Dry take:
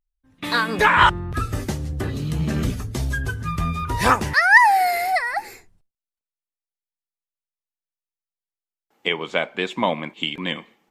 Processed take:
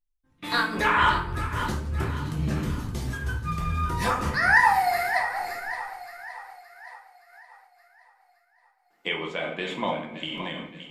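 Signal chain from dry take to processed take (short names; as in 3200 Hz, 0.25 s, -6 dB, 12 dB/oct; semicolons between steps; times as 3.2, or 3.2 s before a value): split-band echo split 550 Hz, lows 0.244 s, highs 0.57 s, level -12 dB; shoebox room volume 120 m³, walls mixed, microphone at 0.81 m; noise-modulated level, depth 60%; gain -5 dB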